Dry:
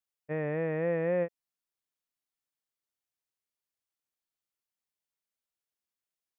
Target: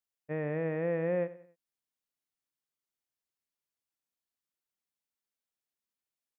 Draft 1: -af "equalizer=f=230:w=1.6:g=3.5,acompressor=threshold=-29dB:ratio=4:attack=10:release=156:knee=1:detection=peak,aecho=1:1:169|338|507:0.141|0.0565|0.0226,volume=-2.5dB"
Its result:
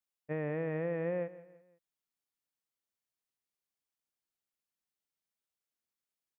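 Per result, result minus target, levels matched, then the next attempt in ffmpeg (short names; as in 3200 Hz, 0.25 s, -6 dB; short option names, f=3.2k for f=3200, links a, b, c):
echo 77 ms late; compressor: peak gain reduction +4.5 dB
-af "equalizer=f=230:w=1.6:g=3.5,acompressor=threshold=-29dB:ratio=4:attack=10:release=156:knee=1:detection=peak,aecho=1:1:92|184|276:0.141|0.0565|0.0226,volume=-2.5dB"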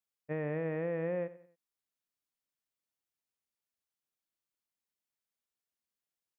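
compressor: peak gain reduction +4.5 dB
-af "equalizer=f=230:w=1.6:g=3.5,aecho=1:1:92|184|276:0.141|0.0565|0.0226,volume=-2.5dB"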